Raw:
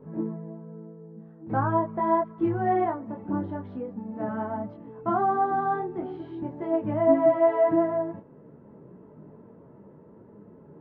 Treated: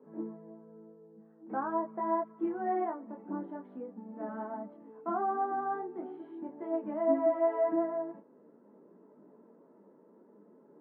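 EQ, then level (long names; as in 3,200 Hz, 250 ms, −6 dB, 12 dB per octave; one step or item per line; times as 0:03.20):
Butterworth high-pass 210 Hz 36 dB per octave
low-pass filter 2,100 Hz 12 dB per octave
−7.5 dB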